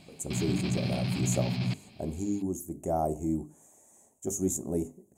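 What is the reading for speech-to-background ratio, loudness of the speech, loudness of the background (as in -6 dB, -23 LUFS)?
-1.5 dB, -33.5 LUFS, -32.0 LUFS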